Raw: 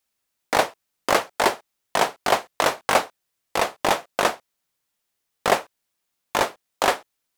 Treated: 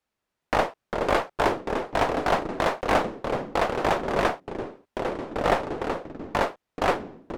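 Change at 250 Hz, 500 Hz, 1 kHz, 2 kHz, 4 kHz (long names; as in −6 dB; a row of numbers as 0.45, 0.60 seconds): +4.0, 0.0, −2.0, −3.5, −7.5 decibels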